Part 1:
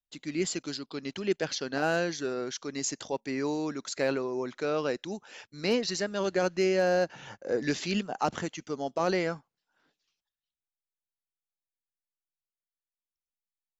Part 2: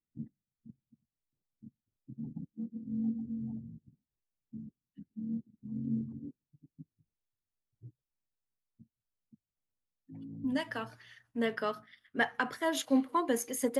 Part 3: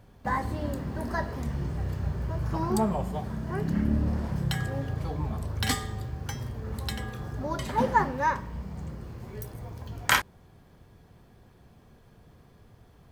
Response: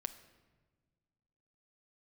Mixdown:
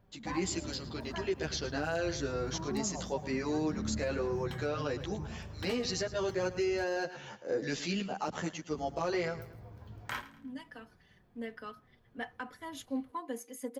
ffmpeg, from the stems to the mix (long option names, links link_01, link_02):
-filter_complex "[0:a]asplit=2[link_01][link_02];[link_02]adelay=11.9,afreqshift=-0.4[link_03];[link_01][link_03]amix=inputs=2:normalize=1,volume=1dB,asplit=3[link_04][link_05][link_06];[link_05]volume=-16dB[link_07];[1:a]aecho=1:1:4:0.67,volume=-12.5dB[link_08];[2:a]equalizer=frequency=9400:width_type=o:width=1.9:gain=-10,flanger=delay=4.9:depth=5.3:regen=62:speed=0.36:shape=triangular,volume=-6.5dB,asplit=3[link_09][link_10][link_11];[link_09]atrim=end=6.84,asetpts=PTS-STARTPTS,afade=type=out:start_time=6.836:duration=0.004:curve=hsin[link_12];[link_10]atrim=start=6.84:end=8.7,asetpts=PTS-STARTPTS,volume=0[link_13];[link_11]atrim=start=8.7,asetpts=PTS-STARTPTS,afade=type=in:duration=0.004:curve=hsin[link_14];[link_12][link_13][link_14]concat=n=3:v=0:a=1,asplit=2[link_15][link_16];[link_16]volume=-19.5dB[link_17];[link_06]apad=whole_len=608665[link_18];[link_08][link_18]sidechaincompress=threshold=-44dB:ratio=8:attack=16:release=1170[link_19];[link_07][link_17]amix=inputs=2:normalize=0,aecho=0:1:110|220|330|440|550:1|0.33|0.109|0.0359|0.0119[link_20];[link_04][link_19][link_15][link_20]amix=inputs=4:normalize=0,alimiter=limit=-23.5dB:level=0:latency=1:release=123"